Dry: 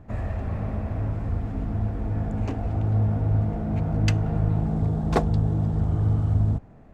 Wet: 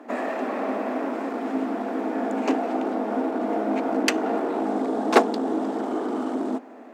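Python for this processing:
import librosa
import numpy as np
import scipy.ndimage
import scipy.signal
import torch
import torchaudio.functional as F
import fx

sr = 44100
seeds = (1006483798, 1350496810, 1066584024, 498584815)

y = fx.fold_sine(x, sr, drive_db=6, ceiling_db=-8.0)
y = scipy.signal.sosfilt(scipy.signal.cheby1(6, 1.0, 240.0, 'highpass', fs=sr, output='sos'), y)
y = y * 10.0 ** (2.0 / 20.0)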